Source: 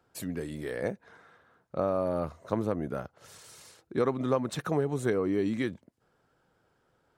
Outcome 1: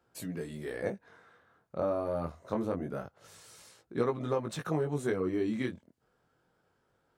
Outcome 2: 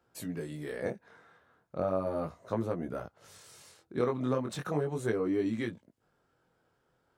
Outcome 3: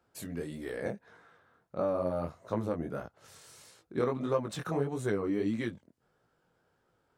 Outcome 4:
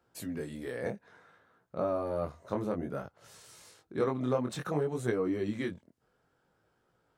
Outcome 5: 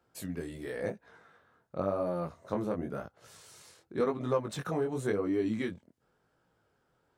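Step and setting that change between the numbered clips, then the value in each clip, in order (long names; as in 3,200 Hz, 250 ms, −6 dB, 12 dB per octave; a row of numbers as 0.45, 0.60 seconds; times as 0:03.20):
chorus effect, speed: 0.25, 0.37, 1.6, 0.58, 0.93 Hertz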